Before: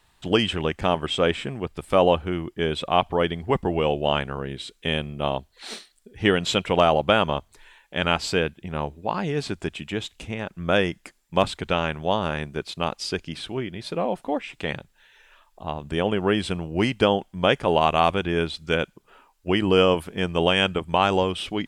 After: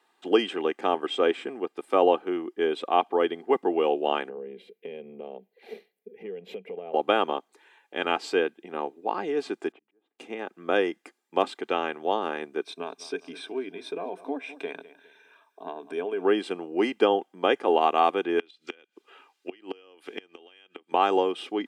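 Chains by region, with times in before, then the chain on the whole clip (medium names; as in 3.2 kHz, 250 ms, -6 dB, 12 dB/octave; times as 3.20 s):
4.29–6.94 s: FFT filter 130 Hz 0 dB, 190 Hz +14 dB, 300 Hz -12 dB, 440 Hz +8 dB, 1.3 kHz -19 dB, 2.2 kHz -1 dB, 3.6 kHz -13 dB, 8.6 kHz -22 dB, 12 kHz +1 dB + compression 10:1, threshold -30 dBFS
9.72–10.19 s: low-pass 1.1 kHz + compression 16:1, threshold -40 dBFS + slow attack 680 ms
12.62–16.25 s: feedback delay 203 ms, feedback 40%, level -22.5 dB + compression 2.5:1, threshold -29 dBFS + rippled EQ curve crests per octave 1.6, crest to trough 11 dB
18.39–20.92 s: frequency weighting D + compression 8:1, threshold -19 dBFS + inverted gate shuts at -14 dBFS, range -25 dB
whole clip: steep high-pass 230 Hz 36 dB/octave; treble shelf 2.4 kHz -10.5 dB; comb 2.5 ms, depth 46%; trim -1.5 dB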